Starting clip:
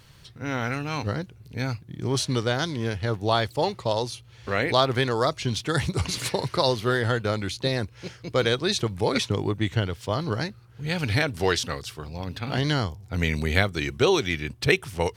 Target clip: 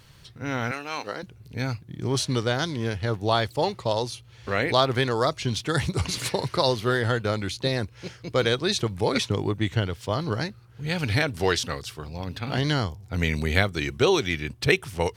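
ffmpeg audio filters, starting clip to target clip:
-filter_complex "[0:a]asettb=1/sr,asplit=3[a][b][c];[a]atrim=end=0.714[d];[b]atrim=start=0.71:end=1.23,asetpts=PTS-STARTPTS,afade=t=in:d=0.004:c=qsin,afade=t=out:st=0.516:d=0.004:c=qsin,highpass=420[e];[c]atrim=start=1.226[f];[d][e]acrossfade=d=0.004:c1=hsin:c2=qsin[g];[g][f]acrossfade=d=0.004:c1=qsin:c2=hsin"

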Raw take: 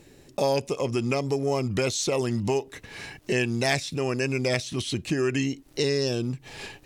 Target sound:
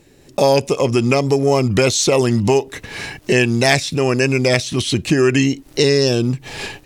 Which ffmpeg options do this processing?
-af "dynaudnorm=f=200:g=3:m=10dB,volume=1.5dB"

